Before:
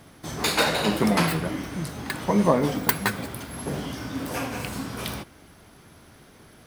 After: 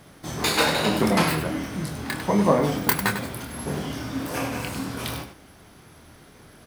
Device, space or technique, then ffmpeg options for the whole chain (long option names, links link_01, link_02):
slapback doubling: -filter_complex "[0:a]asplit=3[link_01][link_02][link_03];[link_02]adelay=26,volume=-6dB[link_04];[link_03]adelay=99,volume=-9dB[link_05];[link_01][link_04][link_05]amix=inputs=3:normalize=0"